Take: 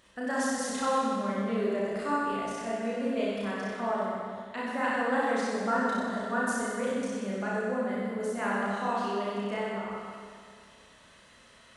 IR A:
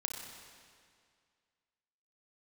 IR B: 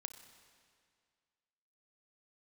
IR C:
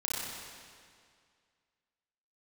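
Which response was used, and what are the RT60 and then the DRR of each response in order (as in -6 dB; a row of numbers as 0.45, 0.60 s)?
C; 2.1, 2.1, 2.1 s; 0.5, 8.0, -7.5 dB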